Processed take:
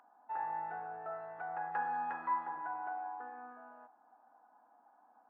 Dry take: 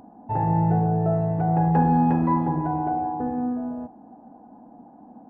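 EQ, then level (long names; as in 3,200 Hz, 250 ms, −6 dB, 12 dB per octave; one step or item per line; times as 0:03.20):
high-pass with resonance 1,400 Hz, resonance Q 2.7
high-shelf EQ 2,300 Hz −11 dB
−5.5 dB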